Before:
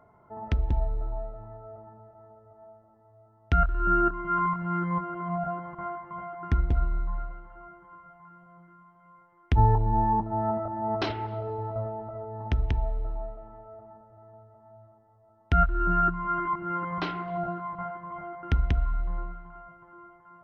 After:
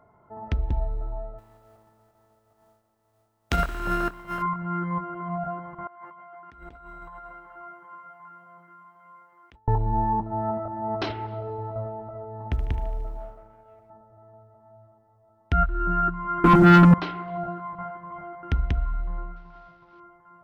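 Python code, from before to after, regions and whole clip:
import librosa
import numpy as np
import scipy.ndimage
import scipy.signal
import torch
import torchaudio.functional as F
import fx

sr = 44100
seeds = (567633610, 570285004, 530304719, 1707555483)

y = fx.spec_flatten(x, sr, power=0.54, at=(1.38, 4.41), fade=0.02)
y = fx.upward_expand(y, sr, threshold_db=-38.0, expansion=1.5, at=(1.38, 4.41), fade=0.02)
y = fx.chain(y, sr, fx.highpass(hz=690.0, slope=6),
    fx.over_compress(threshold_db=-47.0, ratio=-1.0), at=(5.87, 9.68))
y = fx.chain(y, sr, fx.law_mismatch(coded='A'),
    fx.high_shelf(hz=4600.0, db=-8.5),
    fx.echo_feedback(ms=75, feedback_pct=58, wet_db=-12.5), at=(12.51, 13.9))
y = fx.chain(y, sr, fx.tilt_eq(slope=-4.0),
    fx.small_body(hz=(240.0, 810.0, 1300.0), ring_ms=25, db=18),
    fx.leveller(passes=2), at=(16.44, 16.94))
y = fx.chain(y, sr, fx.cvsd(bps=32000),
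    fx.air_absorb(metres=300.0), at=(19.36, 20.0))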